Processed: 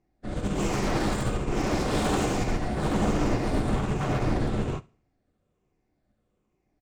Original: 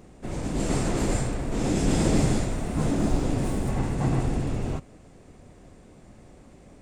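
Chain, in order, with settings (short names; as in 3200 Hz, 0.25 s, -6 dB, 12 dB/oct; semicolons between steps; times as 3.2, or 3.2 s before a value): moving spectral ripple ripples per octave 0.74, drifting -1.2 Hz, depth 7 dB; LPF 6000 Hz 12 dB/oct; in parallel at -2.5 dB: limiter -17.5 dBFS, peak gain reduction 7.5 dB; on the sum: wavefolder -19 dBFS; feedback echo 71 ms, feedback 56%, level -11 dB; on a send at -6 dB: reverb RT60 0.45 s, pre-delay 3 ms; on the sum: upward expander 2.5:1, over -41 dBFS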